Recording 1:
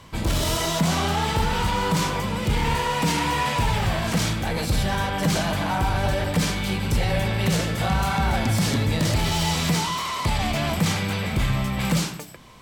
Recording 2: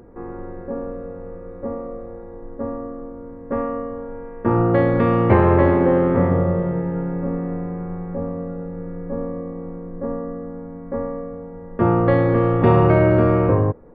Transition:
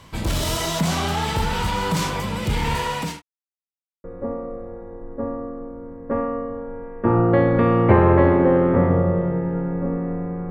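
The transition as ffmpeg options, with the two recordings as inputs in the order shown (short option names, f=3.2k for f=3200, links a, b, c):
-filter_complex "[0:a]apad=whole_dur=10.5,atrim=end=10.5,asplit=2[a][b];[a]atrim=end=3.22,asetpts=PTS-STARTPTS,afade=t=out:st=2.77:d=0.45:c=qsin[c];[b]atrim=start=3.22:end=4.04,asetpts=PTS-STARTPTS,volume=0[d];[1:a]atrim=start=1.45:end=7.91,asetpts=PTS-STARTPTS,afade=t=in:d=0.004:c=hsin[e];[c][d][e]concat=n=3:v=0:a=1"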